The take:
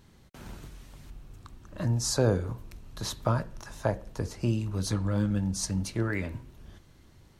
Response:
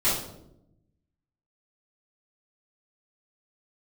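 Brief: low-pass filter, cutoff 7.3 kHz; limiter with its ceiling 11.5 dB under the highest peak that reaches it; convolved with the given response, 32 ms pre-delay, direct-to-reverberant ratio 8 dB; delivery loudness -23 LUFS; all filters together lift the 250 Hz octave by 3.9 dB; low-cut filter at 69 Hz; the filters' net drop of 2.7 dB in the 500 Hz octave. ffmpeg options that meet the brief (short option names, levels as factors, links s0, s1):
-filter_complex "[0:a]highpass=69,lowpass=7300,equalizer=f=250:t=o:g=6.5,equalizer=f=500:t=o:g=-5.5,alimiter=limit=0.0668:level=0:latency=1,asplit=2[s0][s1];[1:a]atrim=start_sample=2205,adelay=32[s2];[s1][s2]afir=irnorm=-1:irlink=0,volume=0.0891[s3];[s0][s3]amix=inputs=2:normalize=0,volume=3.16"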